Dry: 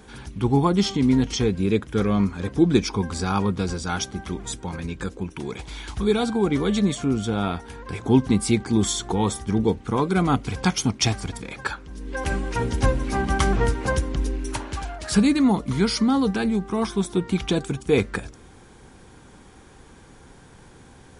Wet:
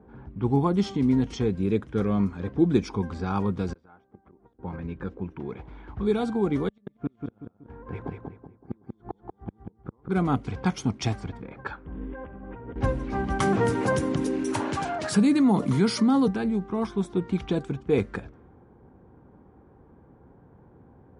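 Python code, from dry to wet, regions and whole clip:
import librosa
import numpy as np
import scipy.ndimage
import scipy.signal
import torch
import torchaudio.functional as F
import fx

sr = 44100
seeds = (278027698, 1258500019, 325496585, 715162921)

y = fx.chain(x, sr, fx.bass_treble(bass_db=-10, treble_db=-7),
    fx.gate_flip(shuts_db=-25.0, range_db=-25),
    fx.over_compress(threshold_db=-48.0, ratio=-1.0), at=(3.73, 4.59))
y = fx.chain(y, sr, fx.gate_flip(shuts_db=-15.0, range_db=-40),
    fx.echo_feedback(ms=188, feedback_pct=39, wet_db=-4), at=(6.68, 10.09))
y = fx.chain(y, sr, fx.room_flutter(wall_m=11.2, rt60_s=0.56),
    fx.over_compress(threshold_db=-33.0, ratio=-1.0),
    fx.brickwall_lowpass(high_hz=3700.0), at=(11.85, 12.76))
y = fx.chain(y, sr, fx.highpass(hz=110.0, slope=24),
    fx.high_shelf(hz=6800.0, db=8.0),
    fx.env_flatten(amount_pct=50), at=(13.4, 16.28))
y = scipy.signal.sosfilt(scipy.signal.butter(2, 60.0, 'highpass', fs=sr, output='sos'), y)
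y = fx.env_lowpass(y, sr, base_hz=870.0, full_db=-18.0)
y = fx.high_shelf(y, sr, hz=2200.0, db=-11.5)
y = y * librosa.db_to_amplitude(-3.0)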